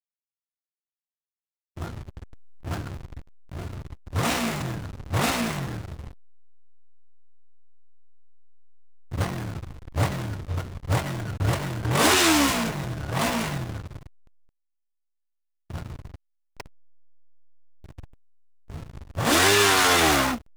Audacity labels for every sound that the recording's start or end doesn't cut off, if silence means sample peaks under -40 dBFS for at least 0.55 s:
1.770000	6.120000	sound
9.120000	14.070000	sound
15.700000	16.660000	sound
17.840000	18.040000	sound